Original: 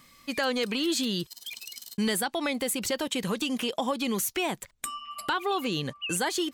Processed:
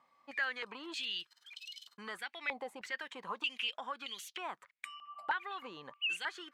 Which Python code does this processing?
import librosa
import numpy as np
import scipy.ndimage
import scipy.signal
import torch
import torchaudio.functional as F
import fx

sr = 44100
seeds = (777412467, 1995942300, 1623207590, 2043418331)

y = fx.filter_held_bandpass(x, sr, hz=3.2, low_hz=830.0, high_hz=3200.0)
y = y * librosa.db_to_amplitude(1.0)